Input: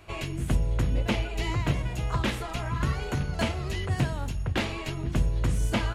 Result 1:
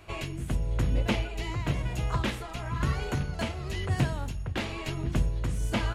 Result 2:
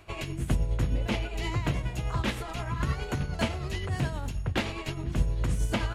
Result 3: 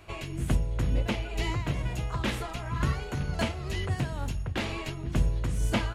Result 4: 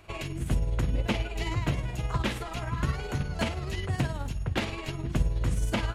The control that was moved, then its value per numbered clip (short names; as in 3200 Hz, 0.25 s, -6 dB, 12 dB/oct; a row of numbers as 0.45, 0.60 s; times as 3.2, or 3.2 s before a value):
tremolo, rate: 1, 9.6, 2.1, 19 Hz